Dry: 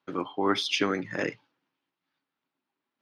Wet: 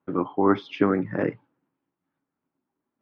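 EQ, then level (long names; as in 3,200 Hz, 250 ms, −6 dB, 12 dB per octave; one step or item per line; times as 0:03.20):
low-pass filter 1,600 Hz 12 dB per octave
dynamic equaliser 1,100 Hz, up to +4 dB, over −42 dBFS, Q 0.99
low-shelf EQ 470 Hz +11 dB
−1.0 dB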